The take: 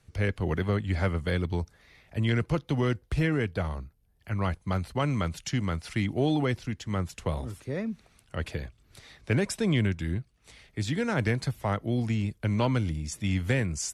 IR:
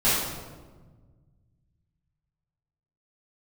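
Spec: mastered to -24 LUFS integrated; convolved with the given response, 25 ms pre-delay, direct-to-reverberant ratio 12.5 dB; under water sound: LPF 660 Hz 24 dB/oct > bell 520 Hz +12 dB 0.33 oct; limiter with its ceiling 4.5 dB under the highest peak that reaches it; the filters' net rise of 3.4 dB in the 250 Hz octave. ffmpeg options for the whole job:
-filter_complex "[0:a]equalizer=f=250:t=o:g=4,alimiter=limit=-18dB:level=0:latency=1,asplit=2[a][b];[1:a]atrim=start_sample=2205,adelay=25[c];[b][c]afir=irnorm=-1:irlink=0,volume=-28.5dB[d];[a][d]amix=inputs=2:normalize=0,lowpass=f=660:w=0.5412,lowpass=f=660:w=1.3066,equalizer=f=520:t=o:w=0.33:g=12,volume=4dB"

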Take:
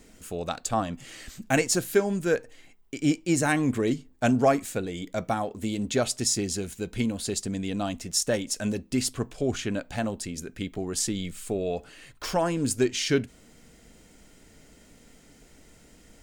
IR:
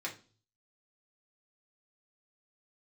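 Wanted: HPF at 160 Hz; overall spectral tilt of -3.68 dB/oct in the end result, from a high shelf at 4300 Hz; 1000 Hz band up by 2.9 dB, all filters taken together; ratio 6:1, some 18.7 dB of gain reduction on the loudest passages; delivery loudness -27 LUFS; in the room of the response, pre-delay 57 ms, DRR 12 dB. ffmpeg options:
-filter_complex "[0:a]highpass=160,equalizer=f=1k:t=o:g=4.5,highshelf=f=4.3k:g=-3,acompressor=threshold=-36dB:ratio=6,asplit=2[a][b];[1:a]atrim=start_sample=2205,adelay=57[c];[b][c]afir=irnorm=-1:irlink=0,volume=-14dB[d];[a][d]amix=inputs=2:normalize=0,volume=12.5dB"

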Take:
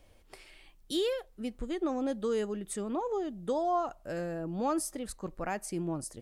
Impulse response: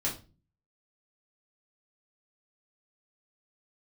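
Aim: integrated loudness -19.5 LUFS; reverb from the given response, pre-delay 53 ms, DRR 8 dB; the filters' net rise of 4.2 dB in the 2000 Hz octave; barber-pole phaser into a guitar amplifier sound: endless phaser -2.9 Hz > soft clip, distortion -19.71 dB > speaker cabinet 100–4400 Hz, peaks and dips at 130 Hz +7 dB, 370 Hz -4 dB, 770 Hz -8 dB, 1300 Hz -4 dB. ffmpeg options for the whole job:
-filter_complex "[0:a]equalizer=f=2k:t=o:g=6.5,asplit=2[a][b];[1:a]atrim=start_sample=2205,adelay=53[c];[b][c]afir=irnorm=-1:irlink=0,volume=-13dB[d];[a][d]amix=inputs=2:normalize=0,asplit=2[e][f];[f]afreqshift=-2.9[g];[e][g]amix=inputs=2:normalize=1,asoftclip=threshold=-25dB,highpass=100,equalizer=f=130:t=q:w=4:g=7,equalizer=f=370:t=q:w=4:g=-4,equalizer=f=770:t=q:w=4:g=-8,equalizer=f=1.3k:t=q:w=4:g=-4,lowpass=f=4.4k:w=0.5412,lowpass=f=4.4k:w=1.3066,volume=19dB"

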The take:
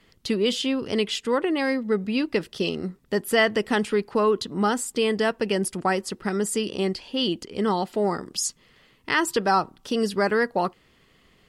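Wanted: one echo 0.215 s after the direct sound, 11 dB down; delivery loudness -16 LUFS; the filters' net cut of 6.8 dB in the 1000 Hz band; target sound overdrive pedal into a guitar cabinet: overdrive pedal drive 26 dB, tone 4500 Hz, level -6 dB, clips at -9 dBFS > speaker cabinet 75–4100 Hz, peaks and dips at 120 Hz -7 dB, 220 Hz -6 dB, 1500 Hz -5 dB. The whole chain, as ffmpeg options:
-filter_complex "[0:a]equalizer=f=1k:t=o:g=-8.5,aecho=1:1:215:0.282,asplit=2[a][b];[b]highpass=f=720:p=1,volume=26dB,asoftclip=type=tanh:threshold=-9dB[c];[a][c]amix=inputs=2:normalize=0,lowpass=f=4.5k:p=1,volume=-6dB,highpass=75,equalizer=f=120:t=q:w=4:g=-7,equalizer=f=220:t=q:w=4:g=-6,equalizer=f=1.5k:t=q:w=4:g=-5,lowpass=f=4.1k:w=0.5412,lowpass=f=4.1k:w=1.3066,volume=3.5dB"

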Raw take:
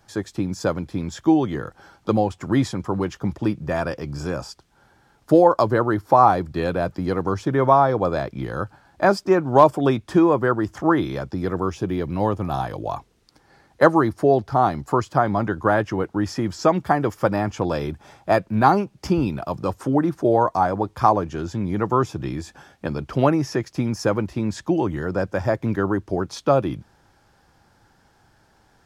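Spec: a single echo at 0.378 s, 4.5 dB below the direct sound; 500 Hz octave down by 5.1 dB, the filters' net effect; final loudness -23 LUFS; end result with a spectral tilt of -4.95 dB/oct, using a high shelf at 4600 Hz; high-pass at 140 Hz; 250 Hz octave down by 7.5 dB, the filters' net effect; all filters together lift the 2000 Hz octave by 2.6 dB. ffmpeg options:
-af "highpass=140,equalizer=f=250:t=o:g=-8.5,equalizer=f=500:t=o:g=-4.5,equalizer=f=2k:t=o:g=3,highshelf=f=4.6k:g=7,aecho=1:1:378:0.596,volume=0.5dB"

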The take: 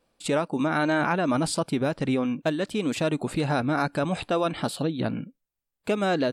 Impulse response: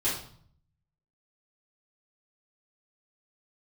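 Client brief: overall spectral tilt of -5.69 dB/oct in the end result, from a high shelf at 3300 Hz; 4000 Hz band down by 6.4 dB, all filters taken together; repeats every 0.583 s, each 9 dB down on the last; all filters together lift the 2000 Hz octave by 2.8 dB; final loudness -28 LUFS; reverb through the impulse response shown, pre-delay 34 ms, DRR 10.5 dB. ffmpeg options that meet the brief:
-filter_complex "[0:a]equalizer=f=2k:t=o:g=7,highshelf=f=3.3k:g=-4,equalizer=f=4k:t=o:g=-8,aecho=1:1:583|1166|1749|2332:0.355|0.124|0.0435|0.0152,asplit=2[a][b];[1:a]atrim=start_sample=2205,adelay=34[c];[b][c]afir=irnorm=-1:irlink=0,volume=-19dB[d];[a][d]amix=inputs=2:normalize=0,volume=-3dB"

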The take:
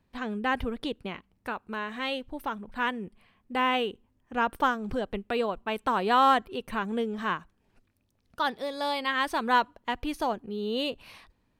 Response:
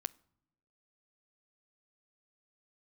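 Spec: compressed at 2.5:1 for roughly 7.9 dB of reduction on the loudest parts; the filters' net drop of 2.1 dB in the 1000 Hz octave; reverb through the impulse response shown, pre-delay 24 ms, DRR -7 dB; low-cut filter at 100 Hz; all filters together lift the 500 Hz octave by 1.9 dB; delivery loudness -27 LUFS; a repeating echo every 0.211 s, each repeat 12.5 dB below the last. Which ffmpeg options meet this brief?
-filter_complex "[0:a]highpass=100,equalizer=f=500:t=o:g=3,equalizer=f=1k:t=o:g=-3.5,acompressor=threshold=-30dB:ratio=2.5,aecho=1:1:211|422|633:0.237|0.0569|0.0137,asplit=2[a][b];[1:a]atrim=start_sample=2205,adelay=24[c];[b][c]afir=irnorm=-1:irlink=0,volume=8.5dB[d];[a][d]amix=inputs=2:normalize=0,volume=-1dB"

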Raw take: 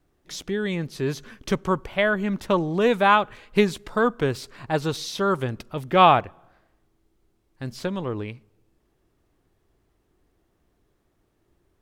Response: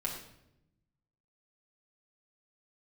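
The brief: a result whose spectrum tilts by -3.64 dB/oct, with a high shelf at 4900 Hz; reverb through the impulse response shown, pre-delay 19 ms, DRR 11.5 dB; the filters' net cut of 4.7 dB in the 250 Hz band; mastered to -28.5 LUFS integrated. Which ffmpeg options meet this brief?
-filter_complex "[0:a]equalizer=f=250:t=o:g=-7,highshelf=f=4.9k:g=-5,asplit=2[a][b];[1:a]atrim=start_sample=2205,adelay=19[c];[b][c]afir=irnorm=-1:irlink=0,volume=-14.5dB[d];[a][d]amix=inputs=2:normalize=0,volume=-4.5dB"

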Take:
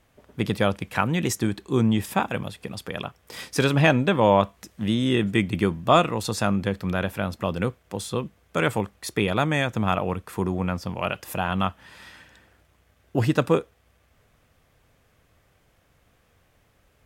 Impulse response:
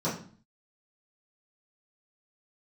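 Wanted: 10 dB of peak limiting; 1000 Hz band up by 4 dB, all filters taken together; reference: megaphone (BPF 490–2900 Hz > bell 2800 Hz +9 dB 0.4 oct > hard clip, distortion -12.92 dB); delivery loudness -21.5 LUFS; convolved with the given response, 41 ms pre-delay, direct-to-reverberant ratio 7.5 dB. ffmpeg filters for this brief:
-filter_complex "[0:a]equalizer=f=1k:t=o:g=5.5,alimiter=limit=-11.5dB:level=0:latency=1,asplit=2[a][b];[1:a]atrim=start_sample=2205,adelay=41[c];[b][c]afir=irnorm=-1:irlink=0,volume=-16.5dB[d];[a][d]amix=inputs=2:normalize=0,highpass=490,lowpass=2.9k,equalizer=f=2.8k:t=o:w=0.4:g=9,asoftclip=type=hard:threshold=-20dB,volume=8dB"

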